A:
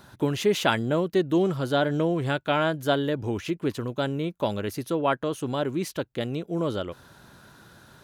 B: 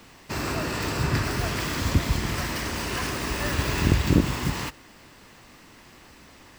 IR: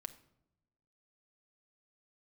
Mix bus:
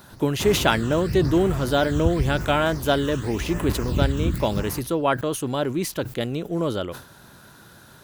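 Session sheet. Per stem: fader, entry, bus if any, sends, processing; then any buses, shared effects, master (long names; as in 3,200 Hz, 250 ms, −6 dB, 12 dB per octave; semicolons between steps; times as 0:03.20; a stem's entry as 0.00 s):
+2.5 dB, 0.00 s, no send, high-shelf EQ 9,700 Hz +9.5 dB; level that may fall only so fast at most 120 dB per second
−1.0 dB, 0.10 s, send −6.5 dB, low-shelf EQ 110 Hz +9 dB; all-pass phaser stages 8, 0.91 Hz, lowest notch 620–5,000 Hz; automatic ducking −12 dB, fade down 1.15 s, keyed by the first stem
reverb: on, pre-delay 6 ms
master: no processing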